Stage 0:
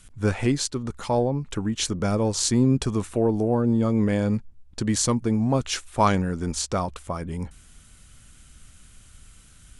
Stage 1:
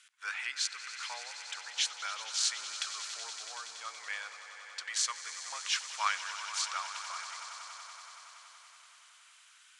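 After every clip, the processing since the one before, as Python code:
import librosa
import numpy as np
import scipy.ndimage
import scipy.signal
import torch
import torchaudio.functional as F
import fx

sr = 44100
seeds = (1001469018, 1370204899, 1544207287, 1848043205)

y = scipy.signal.sosfilt(scipy.signal.butter(4, 1400.0, 'highpass', fs=sr, output='sos'), x)
y = fx.air_absorb(y, sr, metres=82.0)
y = fx.echo_swell(y, sr, ms=94, loudest=5, wet_db=-14.5)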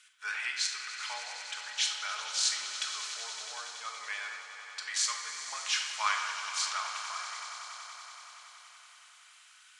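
y = fx.room_shoebox(x, sr, seeds[0], volume_m3=930.0, walls='mixed', distance_m=1.4)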